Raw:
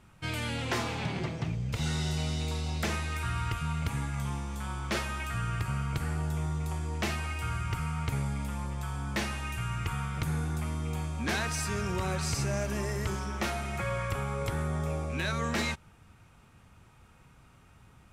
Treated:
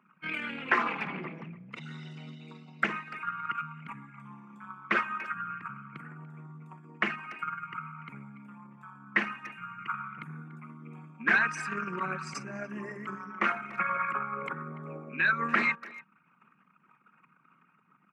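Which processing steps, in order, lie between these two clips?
resonances exaggerated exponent 2; steep high-pass 170 Hz 48 dB/octave; high-order bell 1.7 kHz +13 dB; speakerphone echo 290 ms, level -17 dB; dynamic bell 1.3 kHz, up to +3 dB, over -39 dBFS, Q 1.2; loudspeaker Doppler distortion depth 0.13 ms; trim -2.5 dB

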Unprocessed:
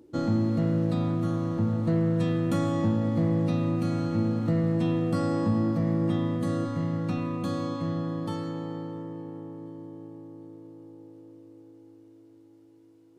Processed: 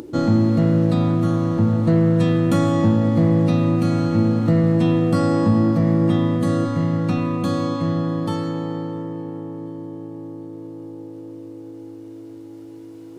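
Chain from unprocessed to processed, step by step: upward compressor, threshold -37 dBFS; trim +8.5 dB

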